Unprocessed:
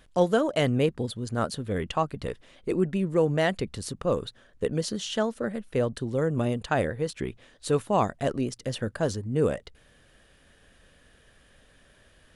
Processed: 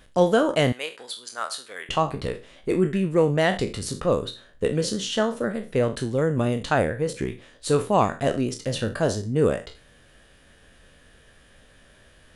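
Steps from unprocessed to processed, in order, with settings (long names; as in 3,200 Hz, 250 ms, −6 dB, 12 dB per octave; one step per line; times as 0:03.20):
peak hold with a decay on every bin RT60 0.32 s
0:00.72–0:01.89: high-pass filter 1,100 Hz 12 dB per octave
0:06.78–0:07.28: parametric band 3,700 Hz −5 dB 1.1 octaves
level +3 dB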